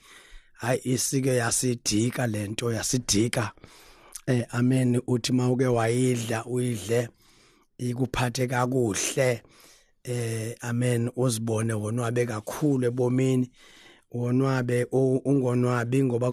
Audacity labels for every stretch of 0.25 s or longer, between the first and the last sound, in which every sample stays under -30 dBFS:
3.640000	4.150000	silence
7.060000	7.800000	silence
9.360000	10.050000	silence
13.450000	14.150000	silence